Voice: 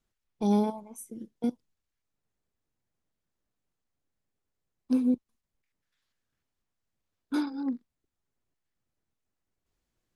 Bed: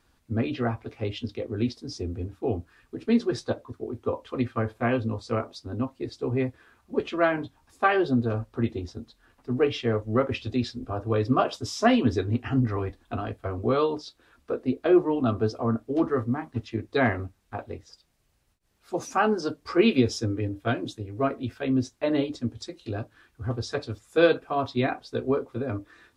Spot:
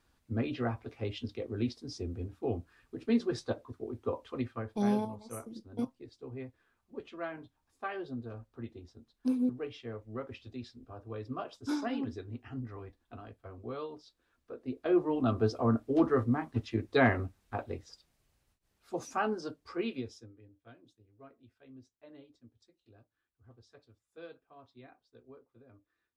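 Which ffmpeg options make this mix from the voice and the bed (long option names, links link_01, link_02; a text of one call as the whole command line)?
ffmpeg -i stem1.wav -i stem2.wav -filter_complex "[0:a]adelay=4350,volume=-4.5dB[link_01];[1:a]volume=8.5dB,afade=type=out:start_time=4.24:duration=0.55:silence=0.298538,afade=type=in:start_time=14.5:duration=1.11:silence=0.188365,afade=type=out:start_time=17.78:duration=2.55:silence=0.0446684[link_02];[link_01][link_02]amix=inputs=2:normalize=0" out.wav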